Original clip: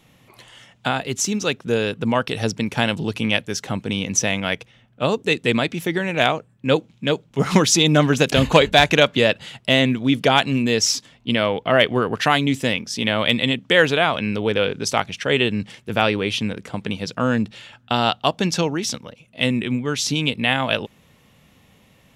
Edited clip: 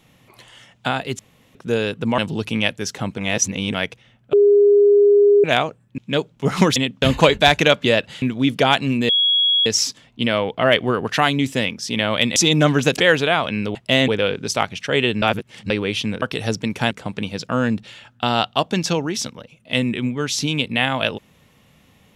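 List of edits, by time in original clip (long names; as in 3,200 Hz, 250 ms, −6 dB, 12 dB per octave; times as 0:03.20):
0:01.19–0:01.55: fill with room tone
0:02.18–0:02.87: move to 0:16.59
0:03.87–0:04.43: reverse
0:05.02–0:06.13: beep over 408 Hz −9 dBFS
0:06.67–0:06.92: remove
0:07.70–0:08.34: swap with 0:13.44–0:13.70
0:09.54–0:09.87: move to 0:14.45
0:10.74: insert tone 3,330 Hz −13.5 dBFS 0.57 s
0:15.59–0:16.07: reverse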